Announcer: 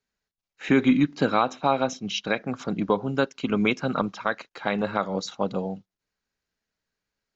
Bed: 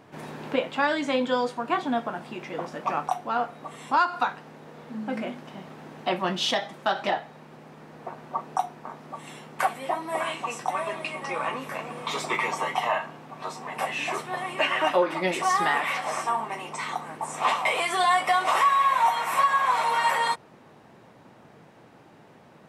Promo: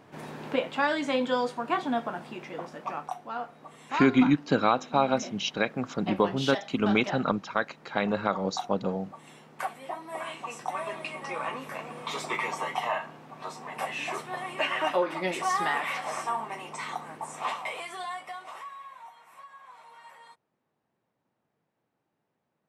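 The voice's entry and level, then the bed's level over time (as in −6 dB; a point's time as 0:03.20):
3.30 s, −1.5 dB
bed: 0:02.19 −2 dB
0:03.09 −8.5 dB
0:10.08 −8.5 dB
0:10.88 −4 dB
0:17.14 −4 dB
0:19.15 −27.5 dB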